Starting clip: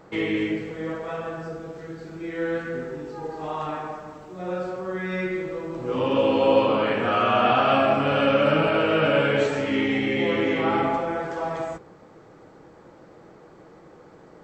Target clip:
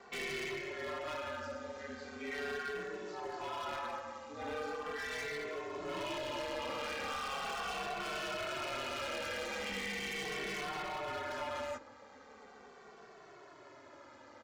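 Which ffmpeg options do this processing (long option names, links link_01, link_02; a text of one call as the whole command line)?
ffmpeg -i in.wav -filter_complex "[0:a]highpass=frequency=1300:poles=1,acompressor=threshold=-33dB:ratio=5,aresample=16000,asoftclip=type=tanh:threshold=-33.5dB,aresample=44100,aeval=exprs='val(0)*sin(2*PI*72*n/s)':channel_layout=same,aeval=exprs='0.0119*(abs(mod(val(0)/0.0119+3,4)-2)-1)':channel_layout=same,asplit=2[link_01][link_02];[link_02]adelay=2.2,afreqshift=-0.39[link_03];[link_01][link_03]amix=inputs=2:normalize=1,volume=7.5dB" out.wav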